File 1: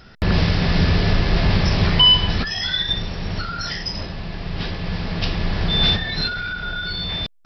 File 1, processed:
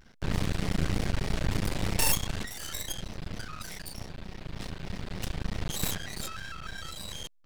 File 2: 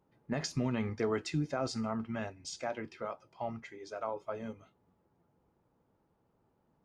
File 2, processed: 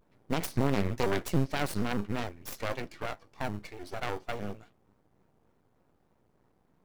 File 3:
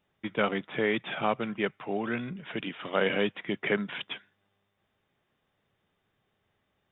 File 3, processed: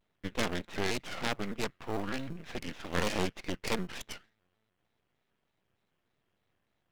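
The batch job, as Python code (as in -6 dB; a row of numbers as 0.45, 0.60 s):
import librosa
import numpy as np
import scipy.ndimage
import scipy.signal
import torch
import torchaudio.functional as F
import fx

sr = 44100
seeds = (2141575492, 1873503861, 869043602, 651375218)

p1 = fx.self_delay(x, sr, depth_ms=0.4)
p2 = np.maximum(p1, 0.0)
p3 = fx.sample_hold(p2, sr, seeds[0], rate_hz=1500.0, jitter_pct=0)
p4 = p2 + (p3 * librosa.db_to_amplitude(-11.5))
p5 = fx.vibrato_shape(p4, sr, shape='square', rate_hz=3.3, depth_cents=160.0)
y = librosa.util.normalize(p5) * 10.0 ** (-12 / 20.0)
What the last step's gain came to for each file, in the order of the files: -9.5, +7.0, -0.5 dB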